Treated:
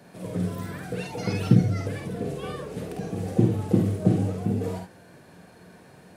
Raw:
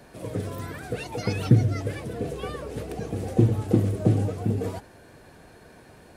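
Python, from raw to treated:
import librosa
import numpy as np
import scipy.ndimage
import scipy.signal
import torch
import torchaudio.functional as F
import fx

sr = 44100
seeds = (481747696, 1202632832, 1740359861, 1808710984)

p1 = scipy.signal.sosfilt(scipy.signal.butter(2, 90.0, 'highpass', fs=sr, output='sos'), x)
p2 = fx.peak_eq(p1, sr, hz=180.0, db=10.0, octaves=0.25)
p3 = p2 + fx.room_early_taps(p2, sr, ms=(50, 72), db=(-4.5, -9.0), dry=0)
y = p3 * librosa.db_to_amplitude(-2.5)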